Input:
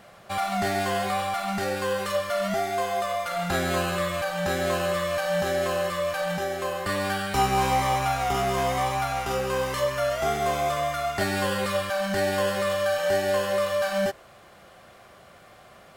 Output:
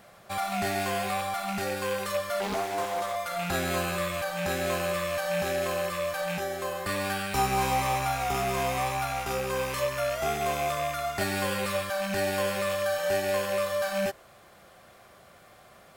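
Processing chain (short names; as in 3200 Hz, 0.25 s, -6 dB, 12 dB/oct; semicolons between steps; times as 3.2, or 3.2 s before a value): rattling part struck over -35 dBFS, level -24 dBFS; high shelf 9000 Hz +7 dB; notch 2900 Hz, Q 29; 2.4–3.16 Doppler distortion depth 0.72 ms; gain -3.5 dB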